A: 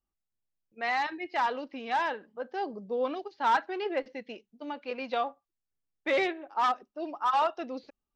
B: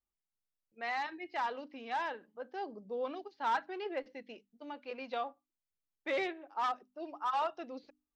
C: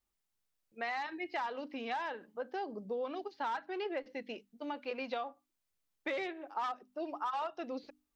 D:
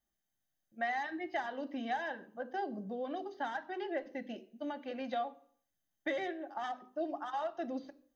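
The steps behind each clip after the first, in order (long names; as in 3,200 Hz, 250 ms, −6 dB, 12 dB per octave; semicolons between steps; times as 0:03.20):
mains-hum notches 50/100/150/200/250/300 Hz; level −7 dB
downward compressor 6 to 1, threshold −41 dBFS, peak gain reduction 12.5 dB; level +6.5 dB
convolution reverb RT60 0.55 s, pre-delay 3 ms, DRR 13 dB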